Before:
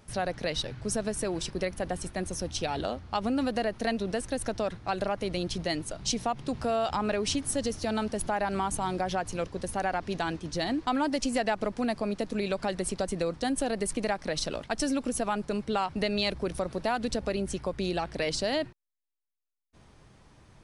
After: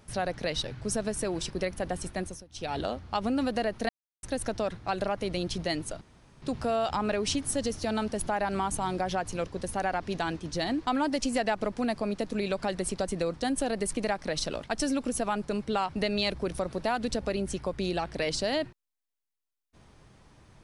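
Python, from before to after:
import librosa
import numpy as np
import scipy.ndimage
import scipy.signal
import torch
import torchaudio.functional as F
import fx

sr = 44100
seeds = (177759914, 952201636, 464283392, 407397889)

y = fx.edit(x, sr, fx.fade_down_up(start_s=2.19, length_s=0.56, db=-21.5, fade_s=0.26),
    fx.silence(start_s=3.89, length_s=0.34),
    fx.room_tone_fill(start_s=6.01, length_s=0.41), tone=tone)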